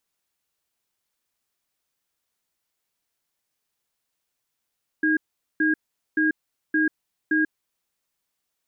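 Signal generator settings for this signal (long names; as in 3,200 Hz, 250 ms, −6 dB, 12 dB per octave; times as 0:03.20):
tone pair in a cadence 311 Hz, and 1,630 Hz, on 0.14 s, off 0.43 s, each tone −20.5 dBFS 2.61 s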